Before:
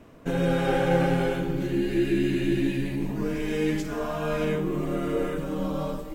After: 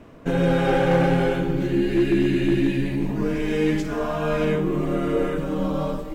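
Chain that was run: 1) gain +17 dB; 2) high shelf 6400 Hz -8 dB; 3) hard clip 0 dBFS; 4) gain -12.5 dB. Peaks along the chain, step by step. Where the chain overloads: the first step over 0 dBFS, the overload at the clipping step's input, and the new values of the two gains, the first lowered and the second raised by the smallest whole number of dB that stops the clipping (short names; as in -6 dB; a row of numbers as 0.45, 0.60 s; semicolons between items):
+6.0, +6.0, 0.0, -12.5 dBFS; step 1, 6.0 dB; step 1 +11 dB, step 4 -6.5 dB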